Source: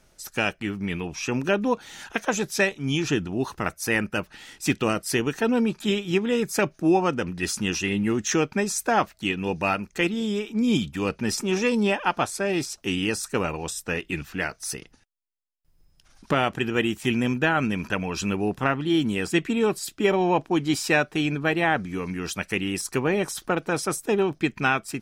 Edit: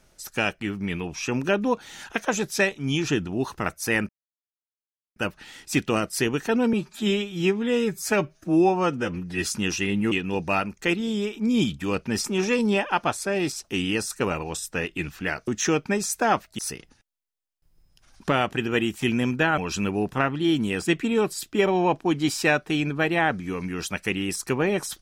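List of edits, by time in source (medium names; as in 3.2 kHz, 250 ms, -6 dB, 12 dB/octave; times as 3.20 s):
4.09 s: insert silence 1.07 s
5.66–7.47 s: stretch 1.5×
8.14–9.25 s: move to 14.61 s
17.60–18.03 s: delete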